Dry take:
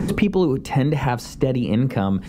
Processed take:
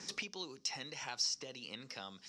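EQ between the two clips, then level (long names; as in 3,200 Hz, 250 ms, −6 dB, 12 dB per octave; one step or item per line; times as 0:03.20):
resonant band-pass 5,500 Hz, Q 5.9
high-frequency loss of the air 50 metres
+9.5 dB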